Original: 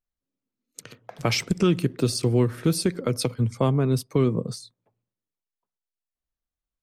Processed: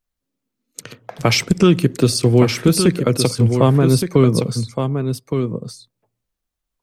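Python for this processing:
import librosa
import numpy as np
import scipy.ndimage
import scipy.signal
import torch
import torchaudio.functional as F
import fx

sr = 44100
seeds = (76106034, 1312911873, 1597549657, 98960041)

y = x + 10.0 ** (-7.0 / 20.0) * np.pad(x, (int(1167 * sr / 1000.0), 0))[:len(x)]
y = y * librosa.db_to_amplitude(8.0)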